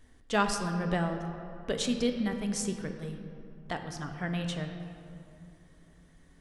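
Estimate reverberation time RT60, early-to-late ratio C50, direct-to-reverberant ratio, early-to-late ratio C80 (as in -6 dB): 2.7 s, 6.5 dB, 5.0 dB, 7.5 dB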